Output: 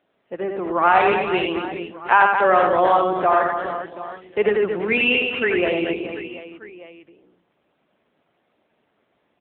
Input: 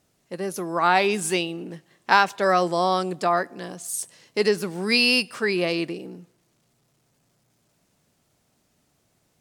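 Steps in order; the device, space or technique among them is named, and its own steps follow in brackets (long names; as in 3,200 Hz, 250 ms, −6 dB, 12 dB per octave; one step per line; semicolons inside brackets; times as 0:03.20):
reverse bouncing-ball delay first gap 90 ms, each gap 1.5×, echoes 5
0:00.76–0:01.41: dynamic equaliser 130 Hz, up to +4 dB, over −40 dBFS, Q 1.4
telephone (band-pass filter 300–3,100 Hz; soft clipping −5.5 dBFS, distortion −24 dB; level +4.5 dB; AMR narrowband 7.95 kbit/s 8,000 Hz)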